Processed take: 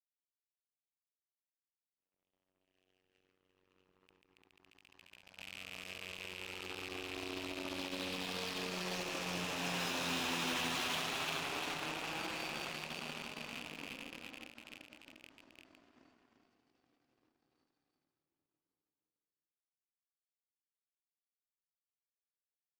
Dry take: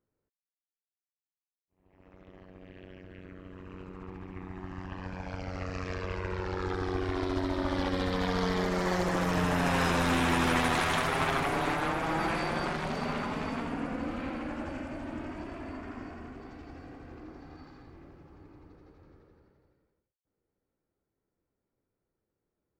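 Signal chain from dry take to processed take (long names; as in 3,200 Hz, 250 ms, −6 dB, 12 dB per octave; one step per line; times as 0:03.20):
loose part that buzzes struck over −38 dBFS, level −26 dBFS
high-pass filter 160 Hz 12 dB per octave
flat-topped bell 4,300 Hz +10 dB
power curve on the samples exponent 2
gain into a clipping stage and back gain 34 dB
single-tap delay 346 ms −5 dB
every ending faded ahead of time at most 110 dB per second
level +1.5 dB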